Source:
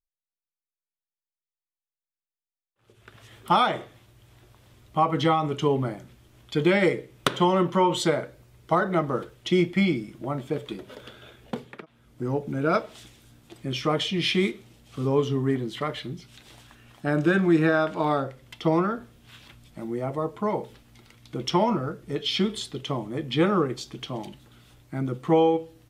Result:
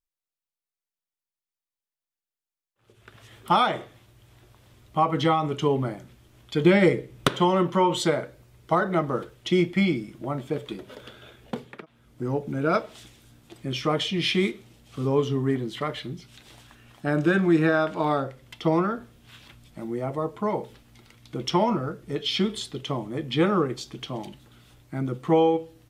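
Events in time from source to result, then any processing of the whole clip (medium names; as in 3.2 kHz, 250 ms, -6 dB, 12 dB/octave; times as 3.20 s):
6.64–7.29 s: bass shelf 290 Hz +7.5 dB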